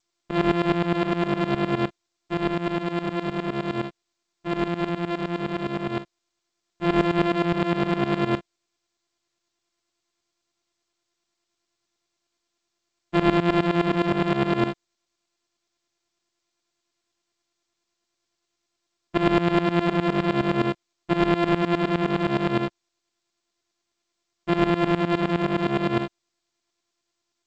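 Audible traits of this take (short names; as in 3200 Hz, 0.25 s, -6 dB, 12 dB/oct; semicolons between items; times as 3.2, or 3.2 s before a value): a buzz of ramps at a fixed pitch in blocks of 128 samples; tremolo saw up 9.7 Hz, depth 90%; G.722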